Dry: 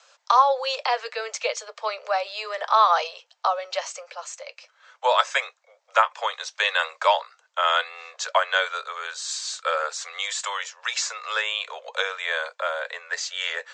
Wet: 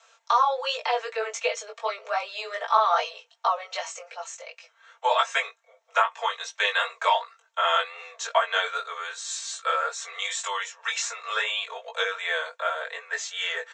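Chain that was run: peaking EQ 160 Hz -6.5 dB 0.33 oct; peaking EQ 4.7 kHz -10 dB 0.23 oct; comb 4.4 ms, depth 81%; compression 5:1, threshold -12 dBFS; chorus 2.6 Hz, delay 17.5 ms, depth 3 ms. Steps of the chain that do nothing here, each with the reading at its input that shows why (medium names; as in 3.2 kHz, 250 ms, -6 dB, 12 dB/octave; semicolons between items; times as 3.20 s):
peaking EQ 160 Hz: input has nothing below 400 Hz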